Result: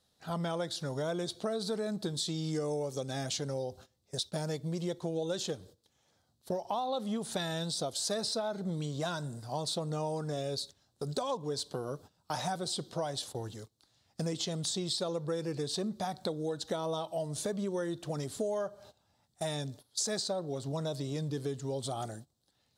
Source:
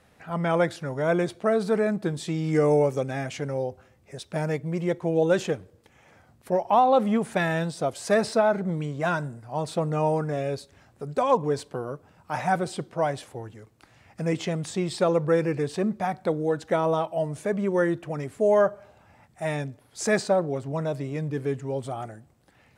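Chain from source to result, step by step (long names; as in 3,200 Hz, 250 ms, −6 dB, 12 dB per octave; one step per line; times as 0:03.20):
noise gate −46 dBFS, range −17 dB
high shelf with overshoot 3,000 Hz +9 dB, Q 3
downward compressor 6 to 1, threshold −32 dBFS, peak gain reduction 15.5 dB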